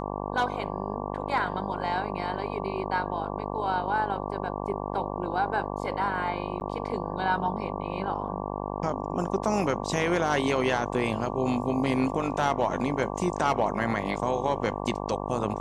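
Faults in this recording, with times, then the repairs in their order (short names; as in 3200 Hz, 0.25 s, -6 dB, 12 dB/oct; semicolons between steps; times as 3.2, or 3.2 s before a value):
buzz 50 Hz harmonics 23 -33 dBFS
6.6–6.61 gap 9.7 ms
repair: de-hum 50 Hz, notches 23; interpolate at 6.6, 9.7 ms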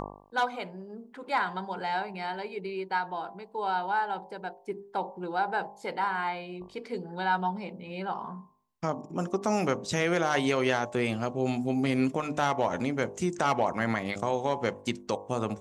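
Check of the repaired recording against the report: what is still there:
none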